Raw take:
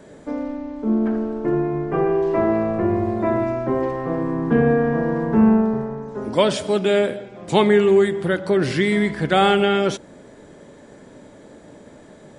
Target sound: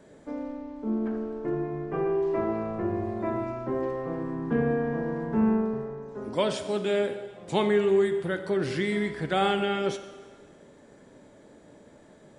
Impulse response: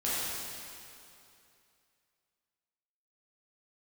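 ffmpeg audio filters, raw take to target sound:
-filter_complex "[0:a]asplit=2[link_01][link_02];[link_02]highpass=frequency=270:width=0.5412,highpass=frequency=270:width=1.3066[link_03];[1:a]atrim=start_sample=2205,asetrate=74970,aresample=44100,adelay=16[link_04];[link_03][link_04]afir=irnorm=-1:irlink=0,volume=-14dB[link_05];[link_01][link_05]amix=inputs=2:normalize=0,volume=-9dB"

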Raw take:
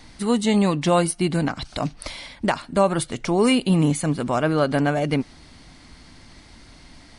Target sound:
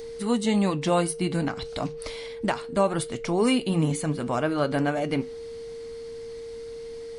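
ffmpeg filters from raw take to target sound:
ffmpeg -i in.wav -filter_complex "[0:a]acrossover=split=4100[link_01][link_02];[link_02]acompressor=mode=upward:threshold=-47dB:ratio=2.5[link_03];[link_01][link_03]amix=inputs=2:normalize=0,flanger=delay=7.6:depth=2.6:regen=-75:speed=0.3:shape=triangular,aeval=exprs='val(0)+0.0178*sin(2*PI*460*n/s)':channel_layout=same" out.wav

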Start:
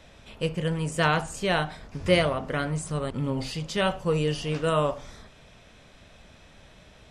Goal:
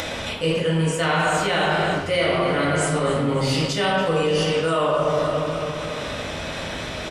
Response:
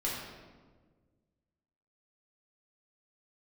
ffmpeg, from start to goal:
-filter_complex "[0:a]highpass=45,aecho=1:1:282|564|846|1128|1410:0.188|0.0961|0.049|0.025|0.0127[link_01];[1:a]atrim=start_sample=2205[link_02];[link_01][link_02]afir=irnorm=-1:irlink=0,asplit=2[link_03][link_04];[link_04]alimiter=limit=-15dB:level=0:latency=1,volume=1dB[link_05];[link_03][link_05]amix=inputs=2:normalize=0,acompressor=mode=upward:threshold=-23dB:ratio=2.5,lowshelf=frequency=300:gain=-8.5,areverse,acompressor=threshold=-24dB:ratio=6,areverse,volume=6dB"

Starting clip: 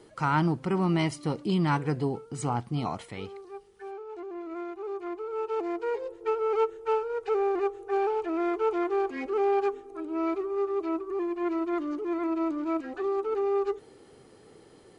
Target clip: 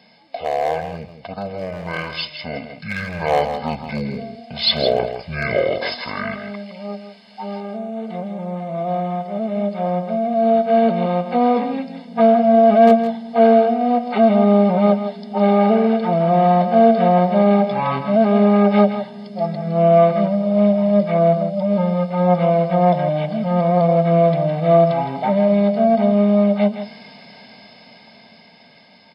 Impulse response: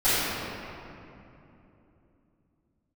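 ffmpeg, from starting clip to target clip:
-filter_complex "[0:a]asplit=2[link_01][link_02];[link_02]alimiter=limit=-22dB:level=0:latency=1:release=26,volume=-2.5dB[link_03];[link_01][link_03]amix=inputs=2:normalize=0,asetrate=22667,aresample=44100,highshelf=frequency=6500:gain=-11,aecho=1:1:1.4:0.69,asoftclip=type=hard:threshold=-13dB,highpass=360,asplit=2[link_04][link_05];[link_05]aecho=0:1:162:0.335[link_06];[link_04][link_06]amix=inputs=2:normalize=0,dynaudnorm=framelen=790:gausssize=9:maxgain=14dB,asuperstop=centerf=1400:order=4:qfactor=4.7,highshelf=frequency=2300:gain=10,volume=1.5dB"

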